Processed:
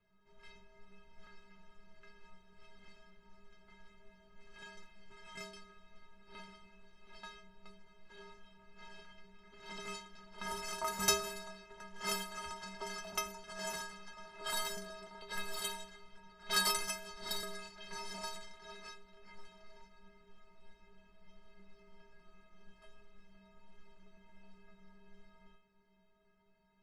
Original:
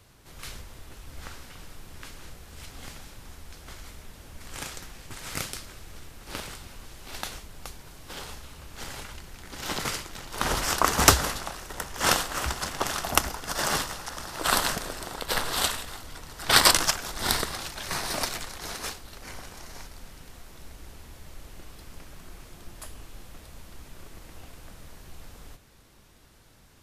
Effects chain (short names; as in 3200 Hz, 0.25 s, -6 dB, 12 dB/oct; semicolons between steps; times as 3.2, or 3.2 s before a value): metallic resonator 190 Hz, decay 0.65 s, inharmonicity 0.03; low-pass opened by the level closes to 2200 Hz, open at -37.5 dBFS; gain +2 dB